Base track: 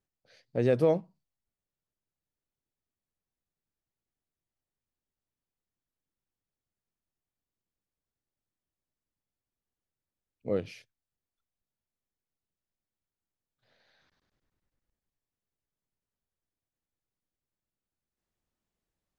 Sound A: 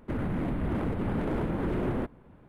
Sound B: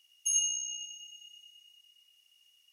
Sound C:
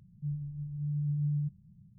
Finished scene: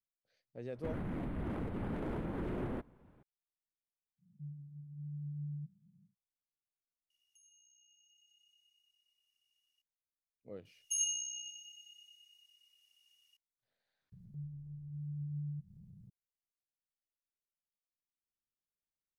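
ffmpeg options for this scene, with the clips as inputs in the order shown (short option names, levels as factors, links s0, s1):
-filter_complex "[3:a]asplit=2[s0][s1];[2:a]asplit=2[s2][s3];[0:a]volume=0.119[s4];[s0]highpass=f=180:t=q:w=2.2[s5];[s2]acompressor=threshold=0.00282:ratio=6:attack=3.2:release=140:knee=1:detection=peak[s6];[s1]acompressor=mode=upward:threshold=0.0178:ratio=2.5:attack=3.2:release=140:knee=2.83:detection=peak[s7];[1:a]atrim=end=2.48,asetpts=PTS-STARTPTS,volume=0.355,afade=t=in:d=0.004:c=hsin,afade=t=out:st=2.476:d=0.004:c=hsin,adelay=750[s8];[s5]atrim=end=1.98,asetpts=PTS-STARTPTS,volume=0.211,afade=t=in:d=0.1,afade=t=out:st=1.88:d=0.1,adelay=183897S[s9];[s6]atrim=end=2.72,asetpts=PTS-STARTPTS,volume=0.158,afade=t=in:d=0.004:c=hsin,afade=t=out:st=2.716:d=0.004:c=hsin,adelay=7100[s10];[s3]atrim=end=2.72,asetpts=PTS-STARTPTS,volume=0.531,afade=t=in:d=0.004:c=hsin,afade=t=out:st=2.716:d=0.004:c=hsin,adelay=10650[s11];[s7]atrim=end=1.98,asetpts=PTS-STARTPTS,volume=0.335,afade=t=in:d=0.004:c=hsin,afade=t=out:st=1.976:d=0.004:c=hsin,adelay=622692S[s12];[s4][s8][s9][s10][s11][s12]amix=inputs=6:normalize=0"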